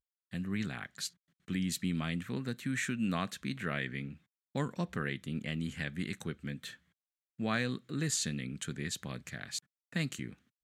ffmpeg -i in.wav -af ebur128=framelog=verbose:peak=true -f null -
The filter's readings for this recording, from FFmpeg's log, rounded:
Integrated loudness:
  I:         -36.9 LUFS
  Threshold: -47.1 LUFS
Loudness range:
  LRA:         2.6 LU
  Threshold: -56.9 LUFS
  LRA low:   -38.6 LUFS
  LRA high:  -36.0 LUFS
True peak:
  Peak:      -16.8 dBFS